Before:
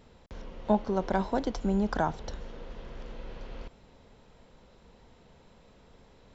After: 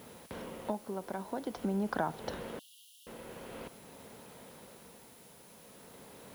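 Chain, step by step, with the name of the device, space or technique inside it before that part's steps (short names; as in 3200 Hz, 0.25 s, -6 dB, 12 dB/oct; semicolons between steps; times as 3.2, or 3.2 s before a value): medium wave at night (BPF 150–3900 Hz; compressor 4:1, threshold -37 dBFS, peak gain reduction 15.5 dB; tremolo 0.47 Hz, depth 55%; whine 10000 Hz -70 dBFS; white noise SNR 19 dB); 2.59–3.07 Chebyshev high-pass 2800 Hz, order 10; gain +7 dB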